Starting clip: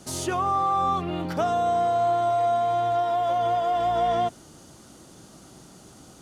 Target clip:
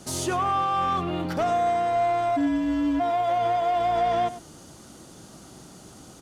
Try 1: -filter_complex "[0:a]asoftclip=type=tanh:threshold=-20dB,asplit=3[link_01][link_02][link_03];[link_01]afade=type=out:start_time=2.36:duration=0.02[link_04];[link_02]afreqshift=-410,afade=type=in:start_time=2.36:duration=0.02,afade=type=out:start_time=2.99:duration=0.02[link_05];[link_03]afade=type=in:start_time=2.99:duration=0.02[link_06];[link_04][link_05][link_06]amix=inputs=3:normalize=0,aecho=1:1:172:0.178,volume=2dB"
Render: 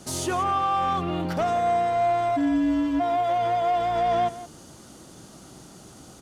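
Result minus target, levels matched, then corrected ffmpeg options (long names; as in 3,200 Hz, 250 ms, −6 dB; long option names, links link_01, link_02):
echo 72 ms late
-filter_complex "[0:a]asoftclip=type=tanh:threshold=-20dB,asplit=3[link_01][link_02][link_03];[link_01]afade=type=out:start_time=2.36:duration=0.02[link_04];[link_02]afreqshift=-410,afade=type=in:start_time=2.36:duration=0.02,afade=type=out:start_time=2.99:duration=0.02[link_05];[link_03]afade=type=in:start_time=2.99:duration=0.02[link_06];[link_04][link_05][link_06]amix=inputs=3:normalize=0,aecho=1:1:100:0.178,volume=2dB"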